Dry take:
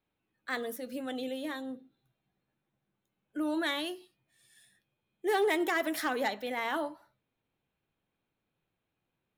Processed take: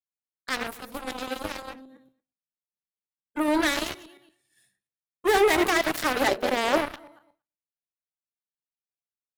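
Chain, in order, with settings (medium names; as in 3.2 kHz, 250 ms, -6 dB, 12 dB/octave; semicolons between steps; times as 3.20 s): backward echo that repeats 116 ms, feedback 41%, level -9 dB; expander -57 dBFS; peaking EQ 3.4 kHz -4.5 dB 0.25 oct; in parallel at -1.5 dB: peak limiter -28 dBFS, peak gain reduction 9.5 dB; on the sum: Chebyshev shaper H 7 -14 dB, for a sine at -16 dBFS; 6.28–6.78 s: small resonant body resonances 380/570 Hz, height 15 dB; trim +4 dB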